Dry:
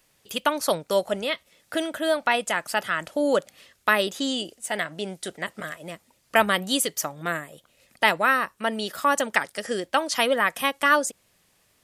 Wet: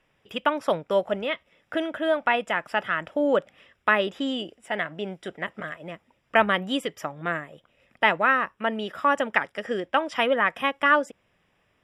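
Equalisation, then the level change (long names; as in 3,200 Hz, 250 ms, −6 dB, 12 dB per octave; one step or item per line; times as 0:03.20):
Savitzky-Golay smoothing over 25 samples
0.0 dB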